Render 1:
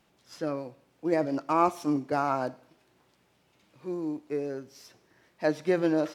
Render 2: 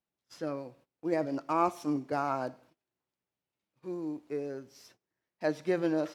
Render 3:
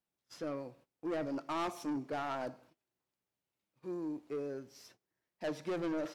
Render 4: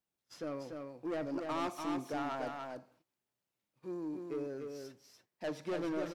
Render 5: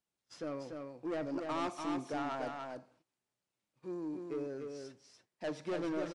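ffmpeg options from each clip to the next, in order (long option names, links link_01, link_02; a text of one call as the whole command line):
ffmpeg -i in.wav -af "agate=range=-21dB:threshold=-55dB:ratio=16:detection=peak,volume=-4dB" out.wav
ffmpeg -i in.wav -af "asoftclip=type=tanh:threshold=-31dB,volume=-1dB" out.wav
ffmpeg -i in.wav -af "aecho=1:1:291:0.596,volume=-1dB" out.wav
ffmpeg -i in.wav -af "aresample=22050,aresample=44100" out.wav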